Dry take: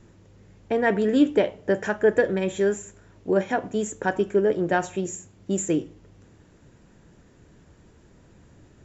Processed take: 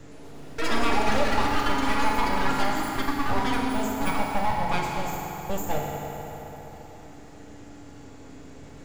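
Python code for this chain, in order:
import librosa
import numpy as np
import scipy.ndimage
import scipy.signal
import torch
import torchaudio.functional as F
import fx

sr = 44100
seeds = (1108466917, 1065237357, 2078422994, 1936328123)

y = np.abs(x)
y = fx.echo_pitch(y, sr, ms=115, semitones=6, count=3, db_per_echo=-3.0)
y = fx.rev_fdn(y, sr, rt60_s=2.9, lf_ratio=1.0, hf_ratio=0.7, size_ms=21.0, drr_db=-2.0)
y = fx.band_squash(y, sr, depth_pct=40)
y = F.gain(torch.from_numpy(y), -4.0).numpy()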